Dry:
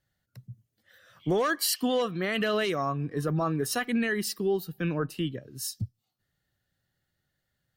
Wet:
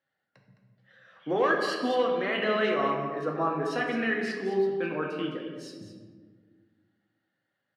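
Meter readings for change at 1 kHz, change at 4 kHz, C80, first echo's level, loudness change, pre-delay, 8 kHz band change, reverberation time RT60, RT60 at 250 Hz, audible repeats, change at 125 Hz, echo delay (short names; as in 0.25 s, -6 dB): +3.0 dB, -4.0 dB, 4.5 dB, -10.5 dB, +1.0 dB, 4 ms, under -15 dB, 1.5 s, 2.3 s, 1, -8.5 dB, 0.212 s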